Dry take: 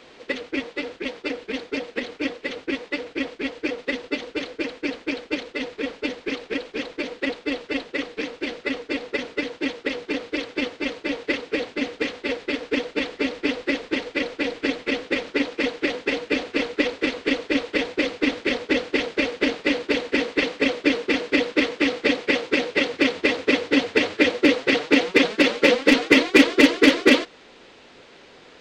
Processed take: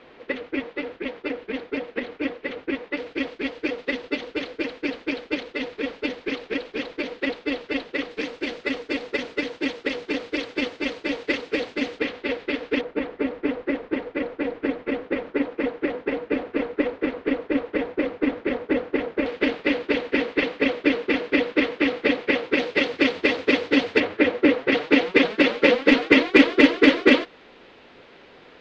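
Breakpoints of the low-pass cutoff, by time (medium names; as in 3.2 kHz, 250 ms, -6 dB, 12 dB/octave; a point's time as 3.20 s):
2.5 kHz
from 2.97 s 4.6 kHz
from 8.11 s 7.5 kHz
from 11.99 s 3.5 kHz
from 12.81 s 1.5 kHz
from 19.26 s 3 kHz
from 22.58 s 4.7 kHz
from 24.00 s 2.2 kHz
from 24.72 s 3.4 kHz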